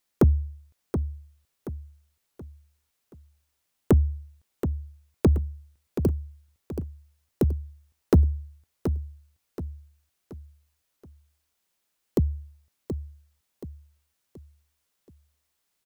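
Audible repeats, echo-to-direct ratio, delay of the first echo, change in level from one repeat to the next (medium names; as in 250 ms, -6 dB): 4, -8.0 dB, 727 ms, -8.0 dB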